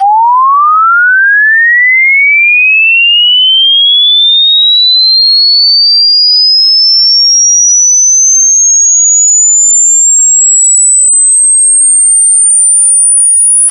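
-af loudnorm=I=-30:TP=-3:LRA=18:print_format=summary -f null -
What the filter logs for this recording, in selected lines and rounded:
Input Integrated:     -2.0 LUFS
Input True Peak:      -1.8 dBTP
Input LRA:             0.7 LU
Input Threshold:     -12.0 LUFS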